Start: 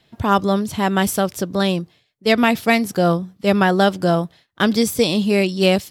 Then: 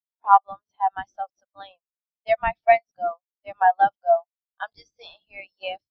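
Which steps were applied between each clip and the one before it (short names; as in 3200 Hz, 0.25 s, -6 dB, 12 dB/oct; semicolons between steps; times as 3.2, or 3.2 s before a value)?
elliptic band-pass 730–6000 Hz, stop band 40 dB; in parallel at -6.5 dB: decimation with a swept rate 34×, swing 100% 2.1 Hz; on the sum: spectral expander 2.5:1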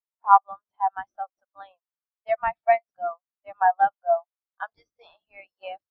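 LPF 1800 Hz 6 dB/oct; bell 1200 Hz +13.5 dB 2.1 oct; gain -11 dB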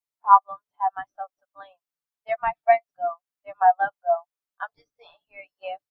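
comb 6.9 ms, depth 59%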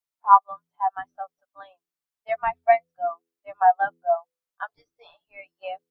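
de-hum 83.94 Hz, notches 6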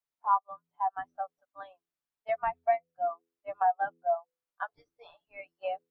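high shelf 2600 Hz -7.5 dB; compressor 2:1, threshold -32 dBFS, peak gain reduction 13 dB; dynamic EQ 450 Hz, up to +3 dB, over -45 dBFS, Q 1.1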